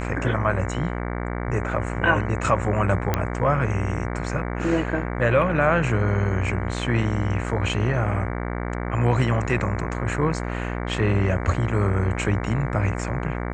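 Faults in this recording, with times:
buzz 60 Hz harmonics 38 -28 dBFS
3.14 s: pop -7 dBFS

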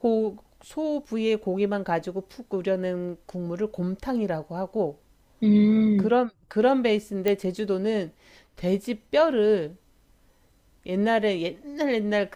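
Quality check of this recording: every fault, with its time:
7.28 s: pop -12 dBFS

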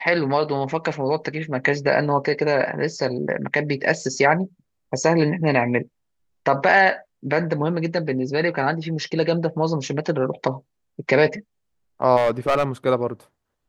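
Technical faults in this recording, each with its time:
12.16–12.64 s: clipped -14 dBFS

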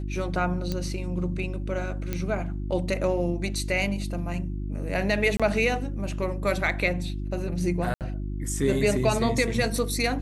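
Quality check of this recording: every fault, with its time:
hum 50 Hz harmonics 7 -31 dBFS
0.72 s: pop -16 dBFS
2.13 s: pop -14 dBFS
5.37–5.40 s: dropout 26 ms
7.94–8.01 s: dropout 68 ms

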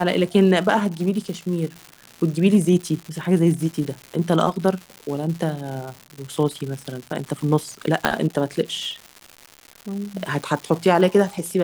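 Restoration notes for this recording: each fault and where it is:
crackle 260 per s -29 dBFS
8.05 s: pop -3 dBFS

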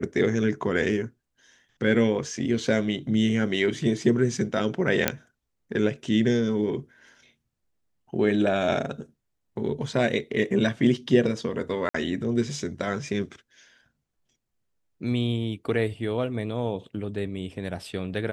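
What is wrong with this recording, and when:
5.08 s: pop -4 dBFS
11.89–11.94 s: dropout 54 ms

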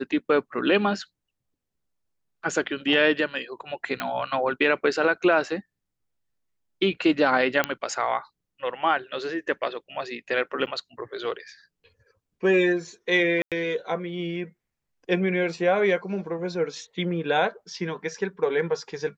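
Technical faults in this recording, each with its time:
4.00 s: pop -14 dBFS
7.64 s: pop -8 dBFS
10.66–10.67 s: dropout 8.6 ms
13.42–13.52 s: dropout 97 ms

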